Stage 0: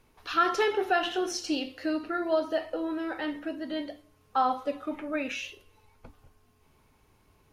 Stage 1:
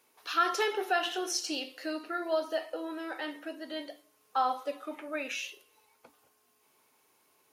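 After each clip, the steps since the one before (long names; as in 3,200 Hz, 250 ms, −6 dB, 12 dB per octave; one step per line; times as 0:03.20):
high-pass filter 370 Hz 12 dB per octave
high-shelf EQ 5,700 Hz +11 dB
level −3 dB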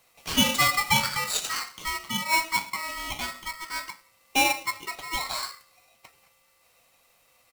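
comb filter 1.3 ms, depth 36%
hollow resonant body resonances 420/1,100/2,700 Hz, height 9 dB
ring modulator with a square carrier 1,600 Hz
level +4 dB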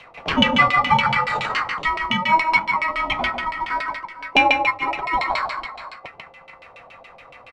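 multi-tap delay 147/445/484 ms −6.5/−19.5/−18 dB
auto-filter low-pass saw down 7.1 Hz 590–3,100 Hz
multiband upward and downward compressor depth 40%
level +6 dB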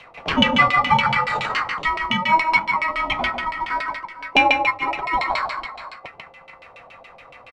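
downsampling to 32,000 Hz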